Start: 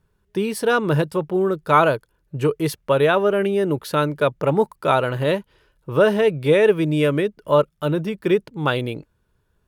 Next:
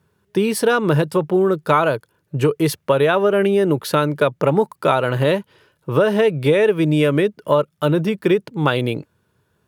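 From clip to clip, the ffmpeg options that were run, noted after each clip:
-af "highpass=f=92:w=0.5412,highpass=f=92:w=1.3066,acompressor=threshold=-18dB:ratio=5,volume=6dB"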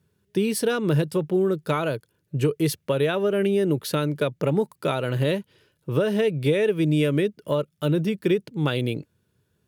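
-af "equalizer=f=1k:w=0.82:g=-10,volume=-3dB"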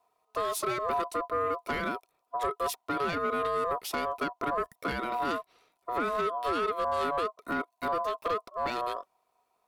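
-af "asoftclip=type=tanh:threshold=-20dB,aeval=exprs='val(0)*sin(2*PI*850*n/s)':c=same,volume=-2dB"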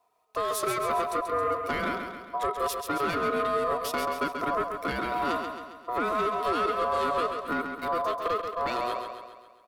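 -af "aecho=1:1:135|270|405|540|675|810|945:0.473|0.251|0.133|0.0704|0.0373|0.0198|0.0105,volume=1.5dB"

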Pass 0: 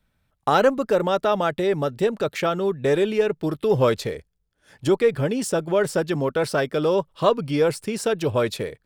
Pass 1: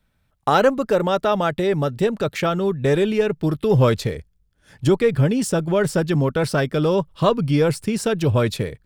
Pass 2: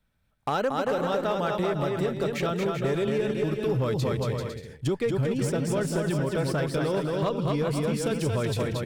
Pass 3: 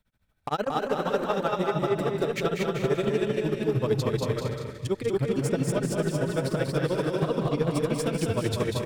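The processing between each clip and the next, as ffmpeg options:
-af "asubboost=boost=2.5:cutoff=250,volume=2dB"
-af "aecho=1:1:230|391|503.7|582.6|637.8:0.631|0.398|0.251|0.158|0.1,acompressor=threshold=-16dB:ratio=6,asoftclip=type=hard:threshold=-13dB,volume=-6dB"
-filter_complex "[0:a]asplit=2[a][b];[b]aecho=0:1:250:0.299[c];[a][c]amix=inputs=2:normalize=0,tremolo=f=13:d=0.99,asplit=2[d][e];[e]aecho=0:1:192.4|227.4:0.447|0.398[f];[d][f]amix=inputs=2:normalize=0,volume=2.5dB"

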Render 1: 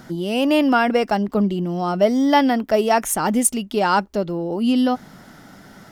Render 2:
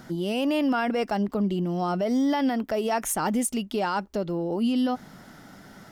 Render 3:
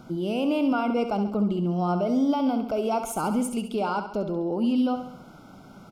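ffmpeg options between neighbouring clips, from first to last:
-af "alimiter=limit=-14dB:level=0:latency=1:release=67,volume=-3.5dB"
-af "asuperstop=centerf=1800:order=8:qfactor=2.9,highshelf=f=3.1k:g=-8.5,aecho=1:1:68|136|204|272|340|408:0.355|0.185|0.0959|0.0499|0.0259|0.0135"

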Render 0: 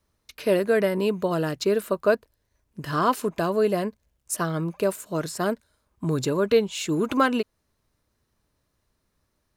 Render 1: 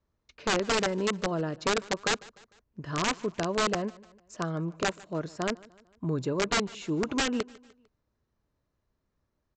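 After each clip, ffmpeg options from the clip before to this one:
-af "highshelf=f=2.1k:g=-10,aresample=16000,aeval=exprs='(mod(6.31*val(0)+1,2)-1)/6.31':c=same,aresample=44100,aecho=1:1:150|300|450:0.075|0.036|0.0173,volume=-4.5dB"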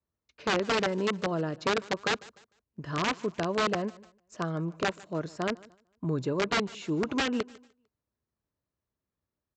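-filter_complex "[0:a]highpass=60,acrossover=split=5200[a][b];[b]acompressor=threshold=-49dB:ratio=4:attack=1:release=60[c];[a][c]amix=inputs=2:normalize=0,agate=range=-9dB:threshold=-53dB:ratio=16:detection=peak"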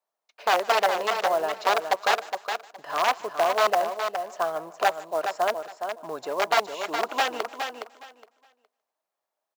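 -af "highpass=f=710:t=q:w=3.6,aecho=1:1:415|830|1245:0.447|0.0804|0.0145,acrusher=bits=5:mode=log:mix=0:aa=0.000001,volume=2.5dB"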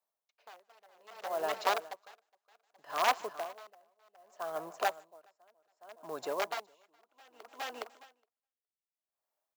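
-filter_complex "[0:a]highshelf=f=8.8k:g=6.5,acrossover=split=110[a][b];[a]aeval=exprs='(mod(1120*val(0)+1,2)-1)/1120':c=same[c];[c][b]amix=inputs=2:normalize=0,aeval=exprs='val(0)*pow(10,-37*(0.5-0.5*cos(2*PI*0.64*n/s))/20)':c=same,volume=-4.5dB"

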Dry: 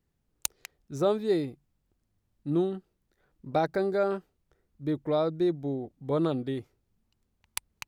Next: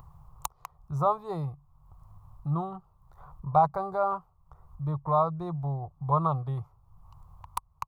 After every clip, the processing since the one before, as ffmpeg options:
-filter_complex "[0:a]firequalizer=gain_entry='entry(150,0);entry(230,-29);entry(740,-1);entry(1100,10);entry(1600,-22);entry(4400,-22);entry(13000,-15)':delay=0.05:min_phase=1,asplit=2[a][b];[b]acompressor=mode=upward:threshold=-34dB:ratio=2.5,volume=2.5dB[c];[a][c]amix=inputs=2:normalize=0"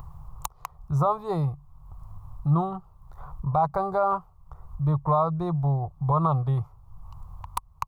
-af "lowshelf=f=71:g=6.5,alimiter=limit=-19dB:level=0:latency=1:release=119,volume=6dB"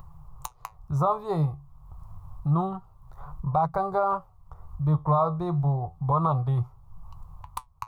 -af "dynaudnorm=f=100:g=13:m=4dB,flanger=delay=5.3:depth=9.7:regen=68:speed=0.28:shape=triangular"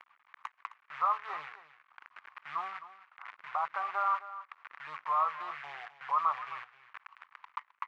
-af "acrusher=bits=7:dc=4:mix=0:aa=0.000001,asuperpass=centerf=1700:order=4:qfactor=1.4,aecho=1:1:262:0.188,volume=3dB"

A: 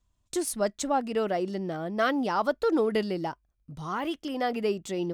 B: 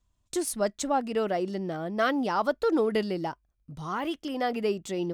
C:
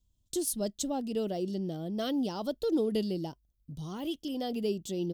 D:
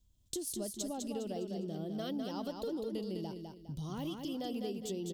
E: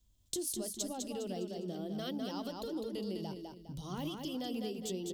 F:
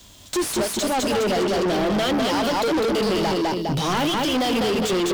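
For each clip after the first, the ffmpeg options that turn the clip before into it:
-af anull
-af "firequalizer=gain_entry='entry(190,0);entry(1200,-19);entry(2200,-17);entry(3100,-1);entry(9200,-1);entry(13000,5)':delay=0.05:min_phase=1"
-filter_complex "[0:a]acompressor=threshold=-40dB:ratio=6,asplit=2[a][b];[b]aecho=0:1:204|408|612|816:0.562|0.191|0.065|0.0221[c];[a][c]amix=inputs=2:normalize=0,volume=2.5dB"
-filter_complex "[0:a]acrossover=split=420|1200[a][b][c];[a]flanger=delay=19.5:depth=3.5:speed=0.95[d];[b]alimiter=level_in=18dB:limit=-24dB:level=0:latency=1,volume=-18dB[e];[d][e][c]amix=inputs=3:normalize=0,volume=2.5dB"
-filter_complex "[0:a]asplit=2[a][b];[b]highpass=f=720:p=1,volume=37dB,asoftclip=type=tanh:threshold=-22dB[c];[a][c]amix=inputs=2:normalize=0,lowpass=f=2.9k:p=1,volume=-6dB,volume=8dB"

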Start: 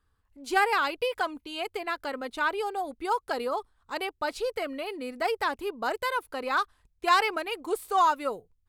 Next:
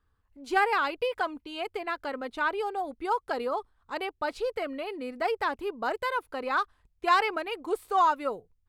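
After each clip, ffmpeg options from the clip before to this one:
-af "highshelf=f=4.6k:g=-10"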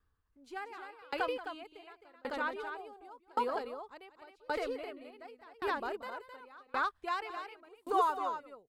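-filter_complex "[0:a]asplit=2[a][b];[b]aecho=0:1:180.8|262.4:0.355|0.891[c];[a][c]amix=inputs=2:normalize=0,aeval=exprs='val(0)*pow(10,-30*if(lt(mod(0.89*n/s,1),2*abs(0.89)/1000),1-mod(0.89*n/s,1)/(2*abs(0.89)/1000),(mod(0.89*n/s,1)-2*abs(0.89)/1000)/(1-2*abs(0.89)/1000))/20)':c=same,volume=-2.5dB"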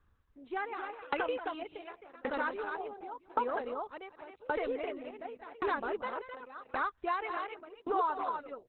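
-af "lowpass=3.2k,acompressor=threshold=-40dB:ratio=2.5,volume=8dB" -ar 48000 -c:a libopus -b:a 8k

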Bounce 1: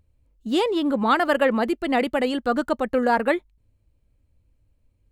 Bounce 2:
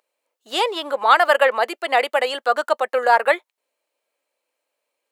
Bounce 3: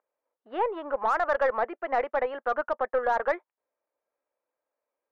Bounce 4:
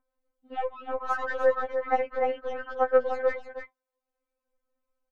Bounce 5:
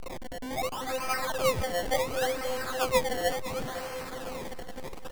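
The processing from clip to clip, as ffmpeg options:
-af "highpass=f=550:w=0.5412,highpass=f=550:w=1.3066,volume=6.5dB"
-af "lowpass=f=1.7k:w=0.5412,lowpass=f=1.7k:w=1.3066,aeval=exprs='0.75*(cos(1*acos(clip(val(0)/0.75,-1,1)))-cos(1*PI/2))+0.0188*(cos(8*acos(clip(val(0)/0.75,-1,1)))-cos(8*PI/2))':c=same,alimiter=limit=-10.5dB:level=0:latency=1:release=19,volume=-5.5dB"
-filter_complex "[0:a]acrossover=split=100|2300[a][b][c];[a]acompressor=mode=upward:threshold=-50dB:ratio=2.5[d];[d][b][c]amix=inputs=3:normalize=0,aecho=1:1:300:0.422,afftfilt=real='re*3.46*eq(mod(b,12),0)':imag='im*3.46*eq(mod(b,12),0)':win_size=2048:overlap=0.75"
-af "aeval=exprs='val(0)+0.5*0.0596*sgn(val(0))':c=same,acrusher=samples=24:mix=1:aa=0.000001:lfo=1:lforange=24:lforate=0.7,aecho=1:1:508|1016|1524|2032:0.224|0.0918|0.0376|0.0154,volume=-6dB"

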